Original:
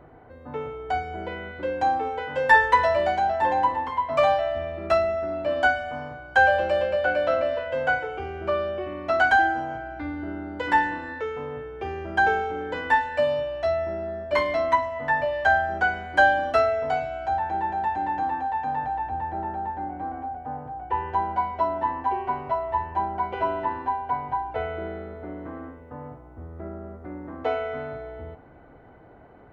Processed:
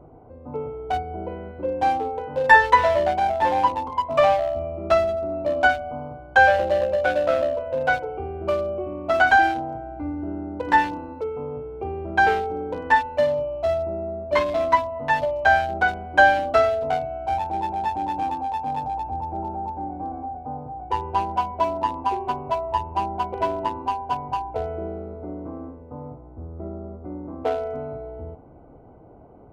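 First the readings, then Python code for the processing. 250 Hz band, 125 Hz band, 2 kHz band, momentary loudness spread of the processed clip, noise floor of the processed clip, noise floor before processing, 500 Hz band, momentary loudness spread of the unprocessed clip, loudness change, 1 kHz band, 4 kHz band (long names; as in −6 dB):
+3.0 dB, +3.5 dB, +1.5 dB, 17 LU, −45 dBFS, −48 dBFS, +2.5 dB, 16 LU, +2.0 dB, +2.0 dB, +2.0 dB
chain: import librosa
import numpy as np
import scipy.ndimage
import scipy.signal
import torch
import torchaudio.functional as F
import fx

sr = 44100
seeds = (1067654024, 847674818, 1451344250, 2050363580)

y = fx.wiener(x, sr, points=25)
y = y * 10.0 ** (3.5 / 20.0)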